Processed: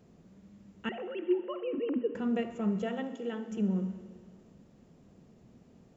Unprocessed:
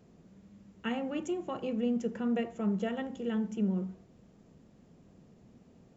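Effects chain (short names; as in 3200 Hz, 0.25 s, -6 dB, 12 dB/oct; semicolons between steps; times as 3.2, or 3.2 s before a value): 0.89–2.15 sine-wave speech; 2.82–3.51 elliptic high-pass 240 Hz; reverb RT60 2.3 s, pre-delay 50 ms, DRR 11.5 dB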